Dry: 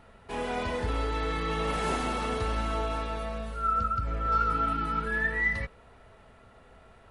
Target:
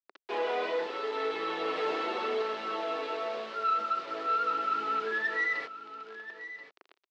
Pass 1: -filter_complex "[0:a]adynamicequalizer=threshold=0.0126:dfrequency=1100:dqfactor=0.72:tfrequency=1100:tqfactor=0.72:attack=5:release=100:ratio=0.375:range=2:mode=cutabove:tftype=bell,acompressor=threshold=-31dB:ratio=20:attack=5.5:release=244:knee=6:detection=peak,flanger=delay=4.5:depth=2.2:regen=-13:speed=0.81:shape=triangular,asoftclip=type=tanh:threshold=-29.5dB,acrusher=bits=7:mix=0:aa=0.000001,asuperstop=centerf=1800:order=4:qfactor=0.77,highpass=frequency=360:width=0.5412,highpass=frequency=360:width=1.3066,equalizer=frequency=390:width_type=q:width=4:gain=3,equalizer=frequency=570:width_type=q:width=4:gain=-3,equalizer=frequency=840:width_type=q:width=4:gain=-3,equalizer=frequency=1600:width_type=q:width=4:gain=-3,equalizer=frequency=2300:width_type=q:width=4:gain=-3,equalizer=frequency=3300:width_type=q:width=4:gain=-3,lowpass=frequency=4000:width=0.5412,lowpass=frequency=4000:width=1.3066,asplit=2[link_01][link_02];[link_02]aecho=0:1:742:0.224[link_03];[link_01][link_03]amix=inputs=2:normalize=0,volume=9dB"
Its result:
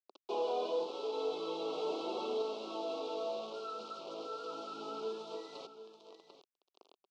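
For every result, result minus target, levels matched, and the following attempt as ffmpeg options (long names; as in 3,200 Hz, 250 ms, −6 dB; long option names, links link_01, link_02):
2,000 Hz band −16.0 dB; downward compressor: peak gain reduction +6 dB; echo 291 ms early
-filter_complex "[0:a]adynamicequalizer=threshold=0.0126:dfrequency=1100:dqfactor=0.72:tfrequency=1100:tqfactor=0.72:attack=5:release=100:ratio=0.375:range=2:mode=cutabove:tftype=bell,acompressor=threshold=-31dB:ratio=20:attack=5.5:release=244:knee=6:detection=peak,flanger=delay=4.5:depth=2.2:regen=-13:speed=0.81:shape=triangular,asoftclip=type=tanh:threshold=-29.5dB,acrusher=bits=7:mix=0:aa=0.000001,highpass=frequency=360:width=0.5412,highpass=frequency=360:width=1.3066,equalizer=frequency=390:width_type=q:width=4:gain=3,equalizer=frequency=570:width_type=q:width=4:gain=-3,equalizer=frequency=840:width_type=q:width=4:gain=-3,equalizer=frequency=1600:width_type=q:width=4:gain=-3,equalizer=frequency=2300:width_type=q:width=4:gain=-3,equalizer=frequency=3300:width_type=q:width=4:gain=-3,lowpass=frequency=4000:width=0.5412,lowpass=frequency=4000:width=1.3066,asplit=2[link_01][link_02];[link_02]aecho=0:1:742:0.224[link_03];[link_01][link_03]amix=inputs=2:normalize=0,volume=9dB"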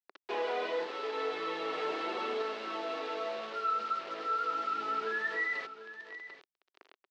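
downward compressor: peak gain reduction +6 dB; echo 291 ms early
-filter_complex "[0:a]adynamicequalizer=threshold=0.0126:dfrequency=1100:dqfactor=0.72:tfrequency=1100:tqfactor=0.72:attack=5:release=100:ratio=0.375:range=2:mode=cutabove:tftype=bell,acompressor=threshold=-24.5dB:ratio=20:attack=5.5:release=244:knee=6:detection=peak,flanger=delay=4.5:depth=2.2:regen=-13:speed=0.81:shape=triangular,asoftclip=type=tanh:threshold=-29.5dB,acrusher=bits=7:mix=0:aa=0.000001,highpass=frequency=360:width=0.5412,highpass=frequency=360:width=1.3066,equalizer=frequency=390:width_type=q:width=4:gain=3,equalizer=frequency=570:width_type=q:width=4:gain=-3,equalizer=frequency=840:width_type=q:width=4:gain=-3,equalizer=frequency=1600:width_type=q:width=4:gain=-3,equalizer=frequency=2300:width_type=q:width=4:gain=-3,equalizer=frequency=3300:width_type=q:width=4:gain=-3,lowpass=frequency=4000:width=0.5412,lowpass=frequency=4000:width=1.3066,asplit=2[link_01][link_02];[link_02]aecho=0:1:742:0.224[link_03];[link_01][link_03]amix=inputs=2:normalize=0,volume=9dB"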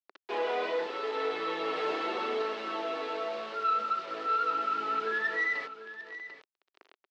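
echo 291 ms early
-filter_complex "[0:a]adynamicequalizer=threshold=0.0126:dfrequency=1100:dqfactor=0.72:tfrequency=1100:tqfactor=0.72:attack=5:release=100:ratio=0.375:range=2:mode=cutabove:tftype=bell,acompressor=threshold=-24.5dB:ratio=20:attack=5.5:release=244:knee=6:detection=peak,flanger=delay=4.5:depth=2.2:regen=-13:speed=0.81:shape=triangular,asoftclip=type=tanh:threshold=-29.5dB,acrusher=bits=7:mix=0:aa=0.000001,highpass=frequency=360:width=0.5412,highpass=frequency=360:width=1.3066,equalizer=frequency=390:width_type=q:width=4:gain=3,equalizer=frequency=570:width_type=q:width=4:gain=-3,equalizer=frequency=840:width_type=q:width=4:gain=-3,equalizer=frequency=1600:width_type=q:width=4:gain=-3,equalizer=frequency=2300:width_type=q:width=4:gain=-3,equalizer=frequency=3300:width_type=q:width=4:gain=-3,lowpass=frequency=4000:width=0.5412,lowpass=frequency=4000:width=1.3066,asplit=2[link_01][link_02];[link_02]aecho=0:1:1033:0.224[link_03];[link_01][link_03]amix=inputs=2:normalize=0,volume=9dB"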